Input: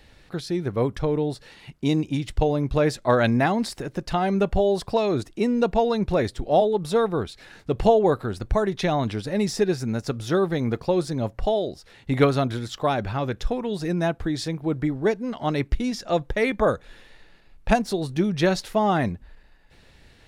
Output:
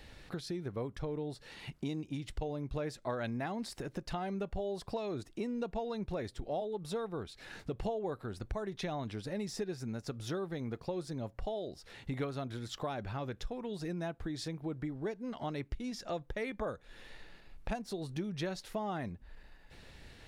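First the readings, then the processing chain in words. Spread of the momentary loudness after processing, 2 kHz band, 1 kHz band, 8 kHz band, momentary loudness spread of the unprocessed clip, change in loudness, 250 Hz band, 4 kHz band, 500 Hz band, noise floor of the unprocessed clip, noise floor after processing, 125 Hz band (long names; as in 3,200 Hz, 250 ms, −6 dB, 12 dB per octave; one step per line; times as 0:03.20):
8 LU, −15.5 dB, −16.5 dB, −12.0 dB, 8 LU, −15.5 dB, −14.5 dB, −12.5 dB, −16.0 dB, −54 dBFS, −60 dBFS, −14.0 dB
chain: downward compressor 3 to 1, threshold −39 dBFS, peak gain reduction 19.5 dB
level −1 dB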